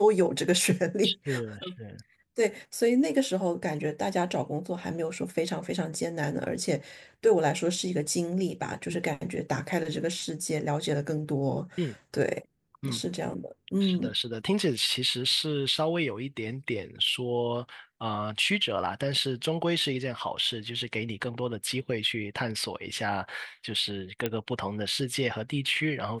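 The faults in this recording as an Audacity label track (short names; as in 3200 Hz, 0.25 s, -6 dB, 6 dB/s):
24.260000	24.260000	pop -14 dBFS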